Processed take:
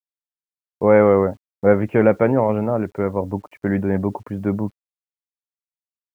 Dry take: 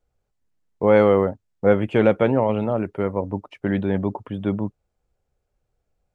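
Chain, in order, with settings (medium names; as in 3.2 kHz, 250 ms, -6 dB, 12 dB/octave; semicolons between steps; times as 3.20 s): steep low-pass 2.3 kHz 36 dB/octave; bit crusher 10-bit; trim +2 dB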